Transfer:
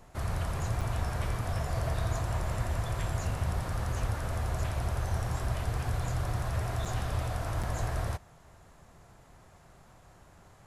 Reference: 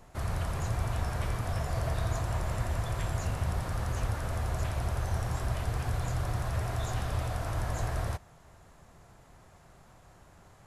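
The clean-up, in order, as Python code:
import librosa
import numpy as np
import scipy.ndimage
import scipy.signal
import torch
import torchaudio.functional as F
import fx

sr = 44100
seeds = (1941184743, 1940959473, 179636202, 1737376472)

y = fx.fix_interpolate(x, sr, at_s=(0.81, 6.85, 7.63), length_ms=5.8)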